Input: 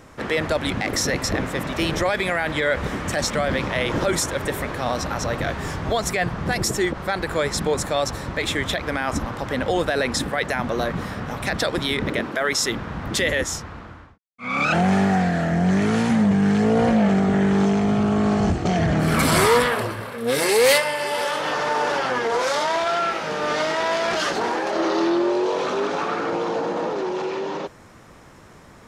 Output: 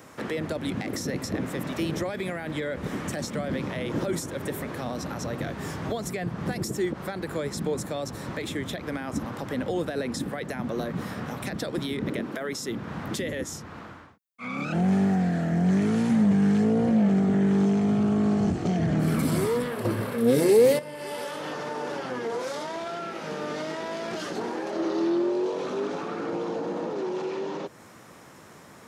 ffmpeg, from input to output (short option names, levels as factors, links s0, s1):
-filter_complex "[0:a]asplit=3[s0][s1][s2];[s0]atrim=end=19.852[s3];[s1]atrim=start=19.848:end=20.792,asetpts=PTS-STARTPTS,volume=2.99[s4];[s2]atrim=start=20.788[s5];[s3][s4]acrossfade=d=0.004:c1=hsin:c2=hsin[s6];[s6][s5]acrossfade=d=0.004:c1=hsin:c2=hsin,highpass=130,highshelf=f=10000:g=10,acrossover=split=410[s7][s8];[s8]acompressor=threshold=0.0178:ratio=4[s9];[s7][s9]amix=inputs=2:normalize=0,volume=0.841"